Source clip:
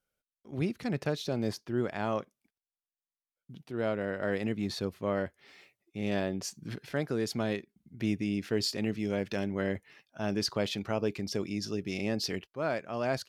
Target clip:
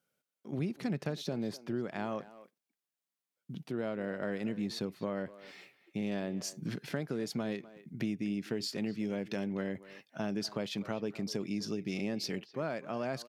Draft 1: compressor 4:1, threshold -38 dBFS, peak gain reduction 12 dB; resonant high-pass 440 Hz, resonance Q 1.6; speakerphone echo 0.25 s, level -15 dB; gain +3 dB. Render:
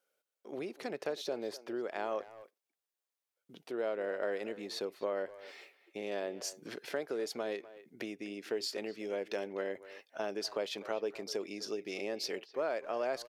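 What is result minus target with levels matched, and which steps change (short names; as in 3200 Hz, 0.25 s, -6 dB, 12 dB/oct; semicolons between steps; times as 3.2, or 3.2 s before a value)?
125 Hz band -17.0 dB
change: resonant high-pass 160 Hz, resonance Q 1.6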